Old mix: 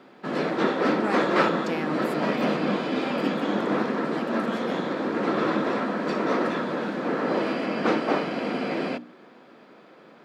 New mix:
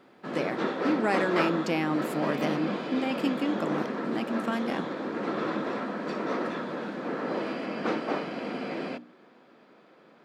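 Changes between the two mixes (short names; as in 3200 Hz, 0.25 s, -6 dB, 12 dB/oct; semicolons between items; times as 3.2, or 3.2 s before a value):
speech +3.5 dB; background -6.0 dB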